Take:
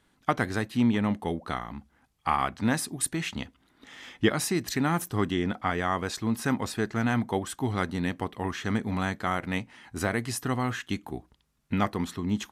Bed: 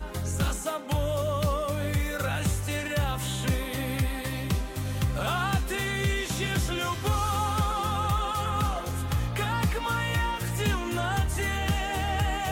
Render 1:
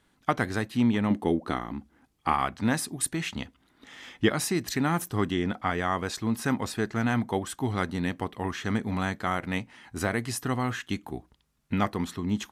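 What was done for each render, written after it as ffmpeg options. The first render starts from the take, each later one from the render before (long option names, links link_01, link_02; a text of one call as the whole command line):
ffmpeg -i in.wav -filter_complex "[0:a]asettb=1/sr,asplit=3[link_01][link_02][link_03];[link_01]atrim=end=1.104[link_04];[link_02]atrim=start=1.1:end=2.33,asetpts=PTS-STARTPTS,afade=type=in:duration=0.004:curve=qsin,afade=type=out:start_time=1.226:duration=0.004:curve=qsin,equalizer=frequency=310:width=1.5:gain=9.5[link_05];[link_03]atrim=start=2.326[link_06];[link_04][link_05]acrossfade=duration=0.004:curve1=hsin:curve2=qsin[link_07];[link_07][link_06]acrossfade=duration=0.004:curve1=qsin:curve2=hsin" out.wav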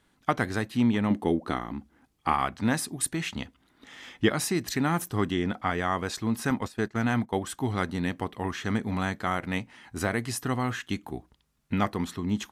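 ffmpeg -i in.wav -filter_complex "[0:a]asettb=1/sr,asplit=3[link_01][link_02][link_03];[link_01]atrim=end=6.504[link_04];[link_02]atrim=start=6.5:end=7.44,asetpts=PTS-STARTPTS,afade=type=in:duration=0.004:curve=qsin,afade=type=out:start_time=0.936:duration=0.004:curve=qsin,agate=range=-13dB:threshold=-34dB:ratio=16:release=100:detection=peak[link_05];[link_03]atrim=start=7.436[link_06];[link_04][link_05]acrossfade=duration=0.004:curve1=hsin:curve2=qsin[link_07];[link_07][link_06]acrossfade=duration=0.004:curve1=qsin:curve2=hsin" out.wav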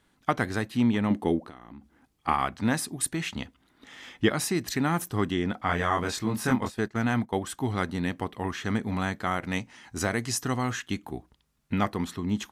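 ffmpeg -i in.wav -filter_complex "[0:a]asettb=1/sr,asplit=3[link_01][link_02][link_03];[link_01]atrim=end=1.454[link_04];[link_02]atrim=start=1.45:end=2.28,asetpts=PTS-STARTPTS,afade=type=in:duration=0.004:curve=qsin,afade=type=out:start_time=0.826:duration=0.004:curve=qsin,acompressor=threshold=-41dB:ratio=8:attack=3.2:release=140:knee=1:detection=peak[link_05];[link_03]atrim=start=2.276[link_06];[link_04][link_05]acrossfade=duration=0.004:curve1=hsin:curve2=qsin[link_07];[link_07][link_06]acrossfade=duration=0.004:curve1=qsin:curve2=hsin,asettb=1/sr,asplit=3[link_08][link_09][link_10];[link_08]atrim=end=5.664[link_11];[link_09]atrim=start=5.66:end=6.79,asetpts=PTS-STARTPTS,afade=type=in:duration=0.004:curve=qsin,afade=type=out:start_time=1.126:duration=0.004:curve=qsin,asplit=2[link_12][link_13];[link_13]adelay=24,volume=-2dB[link_14];[link_12][link_14]amix=inputs=2:normalize=0,atrim=end_sample=49833[link_15];[link_10]atrim=start=6.786[link_16];[link_11][link_15]acrossfade=duration=0.004:curve1=hsin:curve2=qsin[link_17];[link_17][link_16]acrossfade=duration=0.004:curve1=qsin:curve2=hsin,asettb=1/sr,asplit=3[link_18][link_19][link_20];[link_18]atrim=end=9.444[link_21];[link_19]atrim=start=9.44:end=10.8,asetpts=PTS-STARTPTS,afade=type=in:duration=0.004:curve=qsin,afade=type=out:start_time=1.356:duration=0.004:curve=qsin,equalizer=frequency=6200:width=1.7:gain=8[link_22];[link_20]atrim=start=10.796[link_23];[link_21][link_22]acrossfade=duration=0.004:curve1=hsin:curve2=qsin[link_24];[link_24][link_23]acrossfade=duration=0.004:curve1=qsin:curve2=hsin" out.wav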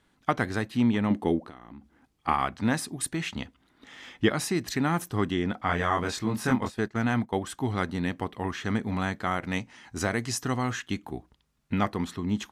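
ffmpeg -i in.wav -af "highshelf=frequency=10000:gain=-7" out.wav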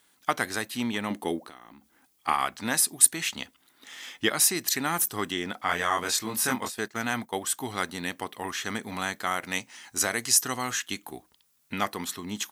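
ffmpeg -i in.wav -af "aemphasis=mode=production:type=riaa" out.wav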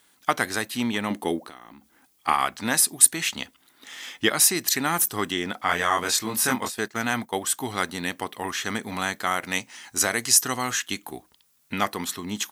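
ffmpeg -i in.wav -af "volume=3.5dB,alimiter=limit=-1dB:level=0:latency=1" out.wav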